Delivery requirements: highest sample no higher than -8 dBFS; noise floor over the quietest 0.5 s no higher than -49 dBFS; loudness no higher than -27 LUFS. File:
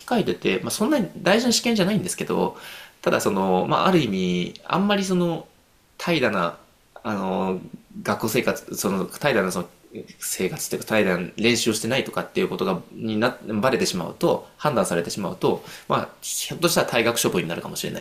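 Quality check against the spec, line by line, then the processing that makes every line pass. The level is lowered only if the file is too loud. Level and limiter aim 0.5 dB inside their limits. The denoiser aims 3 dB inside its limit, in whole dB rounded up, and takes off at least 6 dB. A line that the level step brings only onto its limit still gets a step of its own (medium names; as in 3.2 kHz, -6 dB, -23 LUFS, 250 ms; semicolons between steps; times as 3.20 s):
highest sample -3.5 dBFS: fail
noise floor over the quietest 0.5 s -58 dBFS: pass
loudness -23.0 LUFS: fail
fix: trim -4.5 dB; peak limiter -8.5 dBFS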